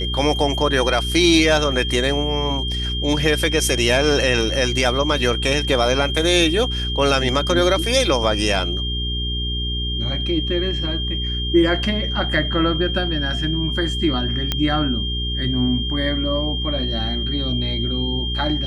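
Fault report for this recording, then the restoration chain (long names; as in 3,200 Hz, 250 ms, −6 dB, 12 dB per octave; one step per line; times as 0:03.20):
mains hum 60 Hz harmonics 7 −25 dBFS
whistle 3,200 Hz −25 dBFS
0:14.52: click −6 dBFS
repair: click removal
hum removal 60 Hz, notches 7
notch filter 3,200 Hz, Q 30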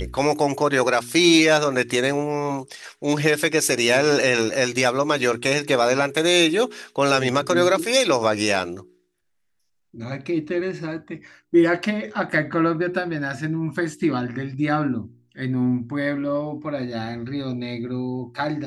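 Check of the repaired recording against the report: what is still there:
none of them is left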